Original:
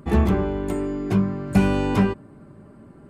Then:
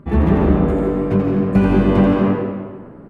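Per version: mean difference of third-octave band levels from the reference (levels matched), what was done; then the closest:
6.0 dB: bass and treble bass +3 dB, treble −14 dB
on a send: echo with shifted repeats 85 ms, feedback 44%, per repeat +91 Hz, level −4.5 dB
on the sum: comb and all-pass reverb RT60 1.5 s, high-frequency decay 0.65×, pre-delay 100 ms, DRR 0 dB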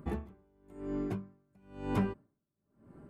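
9.0 dB: parametric band 5,100 Hz −5.5 dB 2.1 octaves
downward compressor 5 to 1, threshold −20 dBFS, peak gain reduction 8 dB
tremolo with a sine in dB 1 Hz, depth 37 dB
level −6 dB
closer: first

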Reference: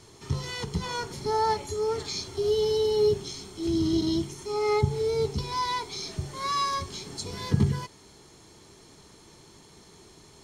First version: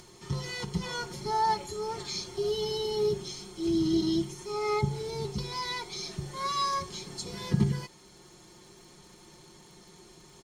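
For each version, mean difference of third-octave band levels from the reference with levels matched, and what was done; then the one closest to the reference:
2.0 dB: comb filter 5.6 ms, depth 60%
surface crackle 96 per second −47 dBFS
upward compression, threshold −46 dBFS
level −3.5 dB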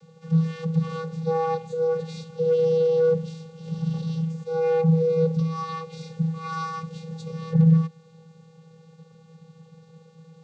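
13.0 dB: high-shelf EQ 6,100 Hz −6 dB
hard clipping −21 dBFS, distortion −14 dB
channel vocoder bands 16, square 162 Hz
level +6.5 dB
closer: first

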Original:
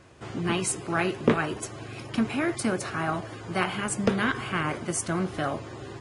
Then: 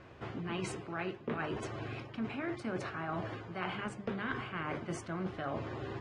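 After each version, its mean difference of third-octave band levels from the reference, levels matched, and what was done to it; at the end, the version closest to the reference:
5.0 dB: low-pass filter 3,200 Hz 12 dB per octave
mains-hum notches 50/100/150/200/250/300/350 Hz
reversed playback
downward compressor 6 to 1, threshold −35 dBFS, peak gain reduction 18.5 dB
reversed playback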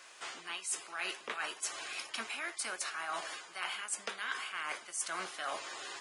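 12.0 dB: high-pass filter 910 Hz 12 dB per octave
high-shelf EQ 2,200 Hz +9 dB
reversed playback
downward compressor 12 to 1, threshold −35 dBFS, peak gain reduction 19.5 dB
reversed playback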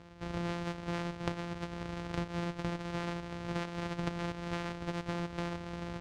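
7.0 dB: samples sorted by size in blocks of 256 samples
downward compressor 6 to 1, threshold −33 dBFS, peak gain reduction 16.5 dB
high-frequency loss of the air 110 metres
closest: first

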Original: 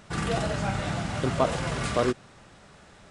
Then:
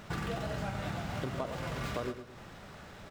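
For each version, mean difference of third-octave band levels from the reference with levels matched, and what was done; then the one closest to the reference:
6.5 dB: running median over 5 samples
downward compressor 6 to 1, threshold −37 dBFS, peak gain reduction 18 dB
on a send: repeating echo 110 ms, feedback 36%, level −9.5 dB
on the sum: level +2.5 dB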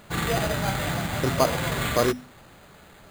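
4.0 dB: mains-hum notches 50/100/150/200/250 Hz
dynamic equaliser 2,000 Hz, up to +5 dB, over −47 dBFS, Q 2.2
bad sample-rate conversion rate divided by 8×, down none, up hold
level +2.5 dB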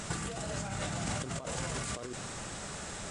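9.0 dB: parametric band 7,700 Hz +12.5 dB 0.9 octaves
compressor whose output falls as the input rises −37 dBFS, ratio −1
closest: second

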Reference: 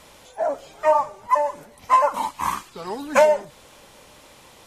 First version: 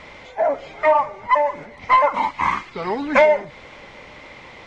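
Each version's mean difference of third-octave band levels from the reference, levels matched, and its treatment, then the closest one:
5.0 dB: parametric band 2,100 Hz +14 dB 0.23 octaves
in parallel at −0.5 dB: downward compressor, threshold −26 dBFS, peak gain reduction 15 dB
on the sum: soft clipping −7 dBFS, distortion −19 dB
Gaussian smoothing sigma 1.9 samples
level +1.5 dB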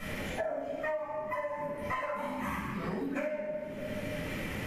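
13.0 dB: octave-band graphic EQ 125/250/1,000/2,000/4,000/8,000 Hz +6/+7/−9/+10/−8/−8 dB
in parallel at −12 dB: hard clipping −18.5 dBFS, distortion −9 dB
on the sum: rectangular room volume 570 cubic metres, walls mixed, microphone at 6.3 metres
downward compressor 20 to 1, threshold −29 dBFS, peak gain reduction 35 dB
level −3 dB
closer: first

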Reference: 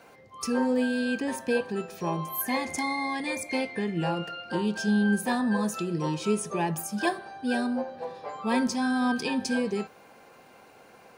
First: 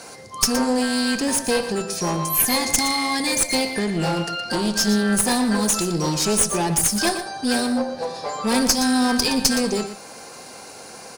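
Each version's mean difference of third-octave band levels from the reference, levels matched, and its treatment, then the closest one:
7.0 dB: flat-topped bell 6,900 Hz +14 dB
in parallel at −0.5 dB: downward compressor, threshold −38 dBFS, peak gain reduction 19.5 dB
on the sum: asymmetric clip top −26.5 dBFS
single-tap delay 118 ms −11 dB
level +5.5 dB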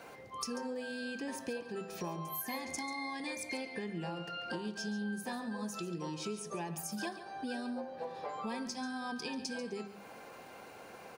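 5.5 dB: mains-hum notches 50/100/150/200/250 Hz
dynamic equaliser 5,300 Hz, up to +6 dB, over −53 dBFS, Q 1.8
downward compressor 6 to 1, threshold −40 dBFS, peak gain reduction 18 dB
on a send: single-tap delay 140 ms −13 dB
on the sum: level +2 dB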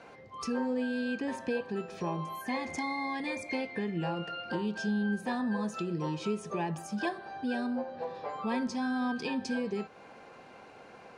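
3.5 dB: downward compressor 2 to 1, threshold −37 dBFS, peak gain reduction 9.5 dB
high-frequency loss of the air 88 metres
level +2 dB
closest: third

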